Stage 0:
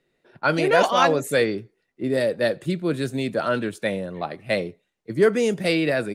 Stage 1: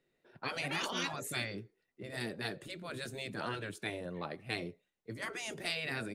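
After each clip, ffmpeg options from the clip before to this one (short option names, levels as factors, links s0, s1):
-af "afftfilt=real='re*lt(hypot(re,im),0.251)':imag='im*lt(hypot(re,im),0.251)':win_size=1024:overlap=0.75,volume=0.398"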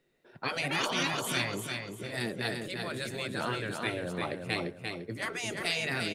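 -af "aecho=1:1:346|692|1038|1384:0.562|0.186|0.0612|0.0202,volume=1.78"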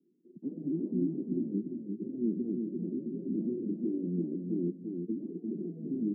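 -af "asuperpass=centerf=250:order=8:qfactor=1.4,volume=2.66"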